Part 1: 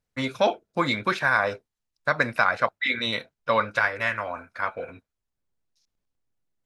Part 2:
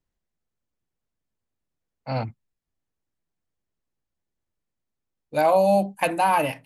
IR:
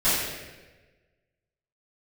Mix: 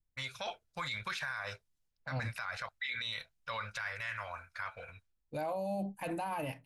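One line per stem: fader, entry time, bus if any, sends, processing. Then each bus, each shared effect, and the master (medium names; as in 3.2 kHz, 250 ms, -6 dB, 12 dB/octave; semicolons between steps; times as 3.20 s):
-4.0 dB, 0.00 s, no send, amplifier tone stack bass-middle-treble 10-0-10; level-controlled noise filter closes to 520 Hz, open at -48 dBFS; bass shelf 160 Hz +9.5 dB
-13.5 dB, 0.00 s, no send, bass shelf 170 Hz +10 dB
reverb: none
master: level rider gain up to 4 dB; peak limiter -29 dBFS, peak gain reduction 15 dB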